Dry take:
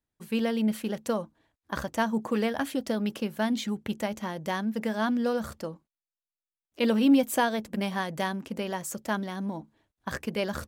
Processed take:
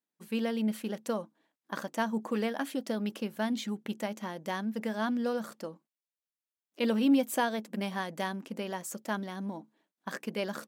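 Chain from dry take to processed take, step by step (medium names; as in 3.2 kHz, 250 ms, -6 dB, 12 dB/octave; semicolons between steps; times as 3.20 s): brick-wall FIR high-pass 160 Hz; trim -4 dB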